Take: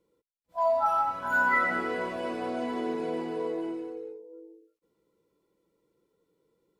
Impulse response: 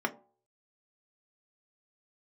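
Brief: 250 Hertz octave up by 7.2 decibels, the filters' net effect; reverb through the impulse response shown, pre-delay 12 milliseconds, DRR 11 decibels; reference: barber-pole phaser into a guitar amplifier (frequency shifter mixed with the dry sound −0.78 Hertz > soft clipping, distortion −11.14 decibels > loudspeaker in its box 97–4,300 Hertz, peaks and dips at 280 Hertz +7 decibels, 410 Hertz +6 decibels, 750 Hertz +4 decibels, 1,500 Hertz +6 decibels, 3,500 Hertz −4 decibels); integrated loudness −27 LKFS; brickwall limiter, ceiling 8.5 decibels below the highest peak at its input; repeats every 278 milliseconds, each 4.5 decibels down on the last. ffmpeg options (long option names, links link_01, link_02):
-filter_complex "[0:a]equalizer=frequency=250:width_type=o:gain=4,alimiter=limit=-22dB:level=0:latency=1,aecho=1:1:278|556|834|1112|1390|1668|1946|2224|2502:0.596|0.357|0.214|0.129|0.0772|0.0463|0.0278|0.0167|0.01,asplit=2[link_01][link_02];[1:a]atrim=start_sample=2205,adelay=12[link_03];[link_02][link_03]afir=irnorm=-1:irlink=0,volume=-19dB[link_04];[link_01][link_04]amix=inputs=2:normalize=0,asplit=2[link_05][link_06];[link_06]afreqshift=-0.78[link_07];[link_05][link_07]amix=inputs=2:normalize=1,asoftclip=threshold=-30.5dB,highpass=97,equalizer=frequency=280:width_type=q:width=4:gain=7,equalizer=frequency=410:width_type=q:width=4:gain=6,equalizer=frequency=750:width_type=q:width=4:gain=4,equalizer=frequency=1500:width_type=q:width=4:gain=6,equalizer=frequency=3500:width_type=q:width=4:gain=-4,lowpass=frequency=4300:width=0.5412,lowpass=frequency=4300:width=1.3066,volume=4.5dB"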